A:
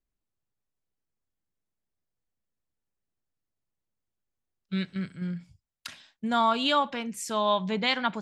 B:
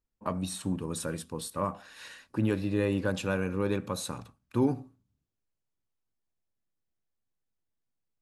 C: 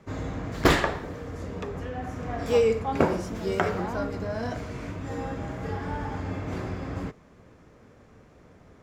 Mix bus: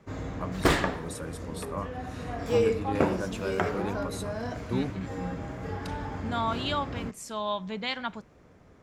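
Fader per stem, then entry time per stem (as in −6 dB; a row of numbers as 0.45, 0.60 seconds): −6.0, −4.5, −3.0 decibels; 0.00, 0.15, 0.00 seconds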